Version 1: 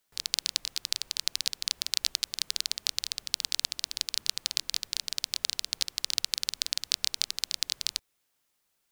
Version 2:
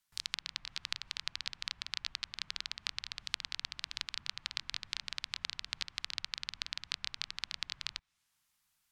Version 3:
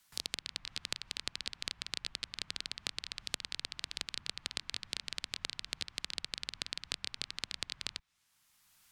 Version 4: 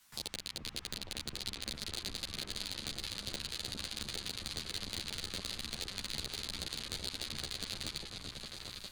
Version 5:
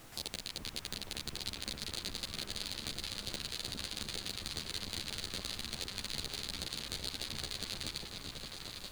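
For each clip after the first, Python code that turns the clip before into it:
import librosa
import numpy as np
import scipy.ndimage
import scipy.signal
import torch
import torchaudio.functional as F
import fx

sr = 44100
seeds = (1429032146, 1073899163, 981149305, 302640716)

y1 = fx.env_lowpass_down(x, sr, base_hz=2600.0, full_db=-34.0)
y1 = fx.rider(y1, sr, range_db=10, speed_s=0.5)
y1 = fx.curve_eq(y1, sr, hz=(160.0, 460.0, 1000.0), db=(0, -17, -2))
y1 = y1 * 10.0 ** (1.0 / 20.0)
y2 = fx.cheby_harmonics(y1, sr, harmonics=(2,), levels_db=(-10,), full_scale_db=-9.5)
y2 = fx.band_squash(y2, sr, depth_pct=40)
y3 = np.clip(y2, -10.0 ** (-27.5 / 20.0), 10.0 ** (-27.5 / 20.0))
y3 = fx.echo_opening(y3, sr, ms=406, hz=400, octaves=2, feedback_pct=70, wet_db=0)
y3 = fx.ensemble(y3, sr)
y3 = y3 * 10.0 ** (8.0 / 20.0)
y4 = fx.dmg_noise_colour(y3, sr, seeds[0], colour='pink', level_db=-55.0)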